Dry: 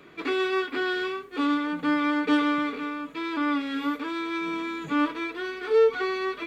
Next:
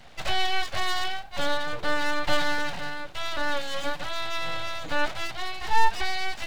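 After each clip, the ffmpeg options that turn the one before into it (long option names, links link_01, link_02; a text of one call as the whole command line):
ffmpeg -i in.wav -af "equalizer=frequency=160:width_type=o:width=0.67:gain=5,equalizer=frequency=400:width_type=o:width=0.67:gain=5,equalizer=frequency=4000:width_type=o:width=0.67:gain=10,aeval=exprs='abs(val(0))':channel_layout=same" out.wav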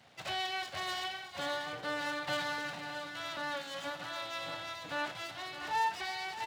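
ffmpeg -i in.wav -af "highpass=frequency=92:width=0.5412,highpass=frequency=92:width=1.3066,aecho=1:1:57|364|616|663:0.237|0.112|0.266|0.237,volume=-9dB" out.wav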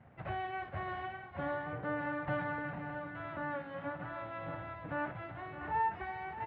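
ffmpeg -i in.wav -af "lowpass=frequency=2000:width=0.5412,lowpass=frequency=2000:width=1.3066,aemphasis=mode=reproduction:type=riaa,crystalizer=i=2:c=0,volume=-1.5dB" out.wav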